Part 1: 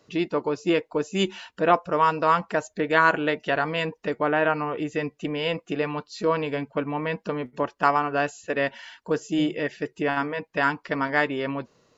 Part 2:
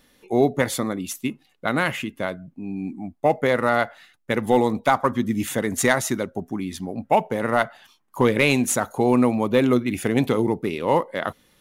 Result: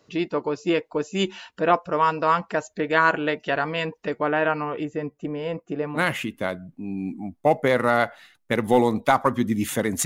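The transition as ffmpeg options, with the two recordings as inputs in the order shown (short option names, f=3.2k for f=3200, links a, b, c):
-filter_complex "[0:a]asettb=1/sr,asplit=3[a][b][c];[a]atrim=end=4.854[d];[b]atrim=start=4.85:end=6,asetpts=PTS-STARTPTS,afade=t=in:d=0.004:c=qsin,afade=t=out:st=1.146:d=0.004:c=qsin,equalizer=f=3.7k:t=o:w=2.4:g=-13.5[e];[c]atrim=start=5.996[f];[d][e]acrossfade=d=0.004:c1=hsin:c2=qsin[g];[g][f]acrossfade=d=0.004:c1=qsin:c2=hsin,apad=whole_dur=10.05,atrim=end=10.05,atrim=end=6,asetpts=PTS-STARTPTS[h];[1:a]atrim=start=1.73:end=5.84,asetpts=PTS-STARTPTS[i];[h][i]acrossfade=d=0.06:c1=tri:c2=tri"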